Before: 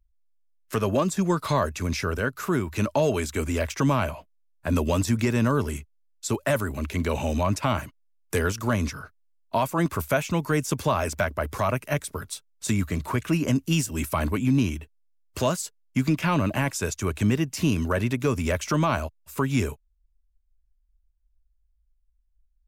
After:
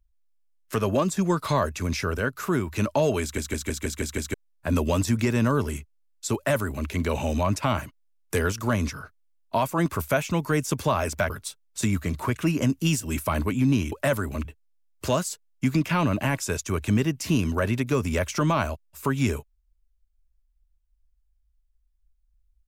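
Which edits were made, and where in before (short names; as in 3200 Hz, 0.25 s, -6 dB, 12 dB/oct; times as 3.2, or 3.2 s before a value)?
3.22 stutter in place 0.16 s, 7 plays
6.35–6.88 copy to 14.78
11.3–12.16 cut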